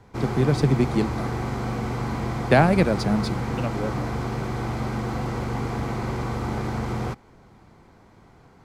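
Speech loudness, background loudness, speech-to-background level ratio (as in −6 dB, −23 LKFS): −23.0 LKFS, −28.5 LKFS, 5.5 dB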